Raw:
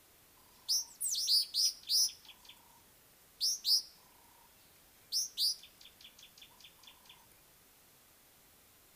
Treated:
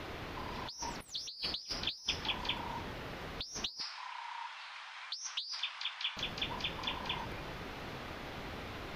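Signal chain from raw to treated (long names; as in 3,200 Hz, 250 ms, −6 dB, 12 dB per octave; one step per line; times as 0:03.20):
0:03.80–0:06.17: elliptic band-pass filter 940–8,800 Hz, stop band 40 dB
compressor whose output falls as the input rises −45 dBFS, ratio −1
high-frequency loss of the air 290 metres
level +15.5 dB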